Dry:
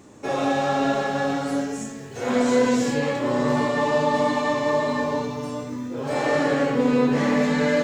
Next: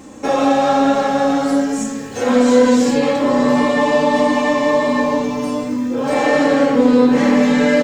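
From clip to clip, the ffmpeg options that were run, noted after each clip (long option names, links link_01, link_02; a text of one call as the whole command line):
ffmpeg -i in.wav -filter_complex "[0:a]aecho=1:1:3.8:0.61,asplit=2[link_01][link_02];[link_02]acompressor=threshold=-26dB:ratio=6,volume=0dB[link_03];[link_01][link_03]amix=inputs=2:normalize=0,volume=2.5dB" out.wav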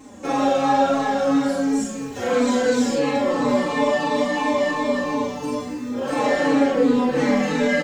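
ffmpeg -i in.wav -filter_complex "[0:a]asplit=2[link_01][link_02];[link_02]adelay=43,volume=-3.5dB[link_03];[link_01][link_03]amix=inputs=2:normalize=0,asplit=2[link_04][link_05];[link_05]adelay=4.2,afreqshift=-2.9[link_06];[link_04][link_06]amix=inputs=2:normalize=1,volume=-3dB" out.wav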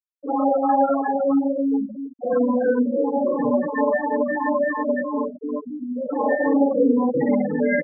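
ffmpeg -i in.wav -af "afftfilt=real='re*gte(hypot(re,im),0.224)':imag='im*gte(hypot(re,im),0.224)':win_size=1024:overlap=0.75" out.wav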